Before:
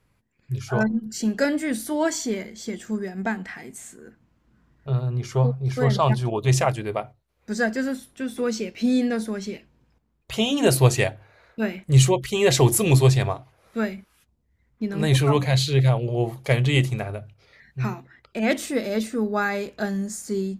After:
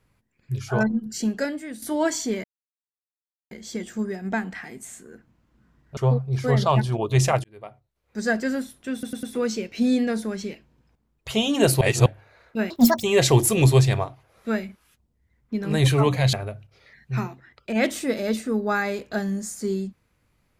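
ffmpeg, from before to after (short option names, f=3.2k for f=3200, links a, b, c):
-filter_complex "[0:a]asplit=13[a][b][c][d][e][f][g][h][i][j][k][l][m];[a]atrim=end=1.82,asetpts=PTS-STARTPTS,afade=t=out:st=1.23:d=0.59:c=qua:silence=0.281838[n];[b]atrim=start=1.82:end=2.44,asetpts=PTS-STARTPTS,afade=t=in:d=0.004:c=hsin:silence=0.281838,afade=t=out:st=0.616:d=0.004:c=hsin,apad=pad_dur=1.07[o];[c]atrim=start=2.44:end=4.902,asetpts=PTS-STARTPTS,afade=t=in:d=0.004:c=hsin[p];[d]atrim=start=5.298:end=6.77,asetpts=PTS-STARTPTS,afade=t=out:st=1.468:d=0.004:c=hsin[q];[e]atrim=start=6.77:end=8.362,asetpts=PTS-STARTPTS,afade=t=in:d=0.87[r];[f]atrim=start=8.258:end=8.362[s];[g]atrim=start=8.258:end=8.362[t];[h]atrim=start=8.258:end=10.842[u];[i]atrim=start=10.838:end=11.092,asetpts=PTS-STARTPTS,areverse[v];[j]atrim=start=11.088:end=11.734[w];[k]atrim=start=11.73:end=12.32,asetpts=PTS-STARTPTS,asetrate=78498,aresample=44100,atrim=end_sample=14617,asetpts=PTS-STARTPTS[x];[l]atrim=start=12.316:end=15.622[y];[m]atrim=start=16.998[z];[n][o][p]concat=n=3:v=0:a=1[aa];[q][r]concat=n=2:v=0:a=1[ab];[aa][ab]acrossfade=d=0.004:c1=hsin:c2=hsin[ac];[ac][s]acrossfade=d=0.004:c1=hsin:c2=hsin[ad];[ad][t]acrossfade=d=0.004:c1=hsin:c2=hsin[ae];[ae][u]acrossfade=d=0.004:c1=hsin:c2=hsin[af];[af][v]acrossfade=d=0.004:c1=hsin:c2=hsin[ag];[ag][w]acrossfade=d=0.004:c1=hsin:c2=hsin[ah];[ah][x]acrossfade=d=0.004:c1=hsin:c2=hsin[ai];[ai][y]acrossfade=d=0.004:c1=hsin:c2=hsin[aj];[aj][z]acrossfade=d=0.004:c1=hsin:c2=hsin"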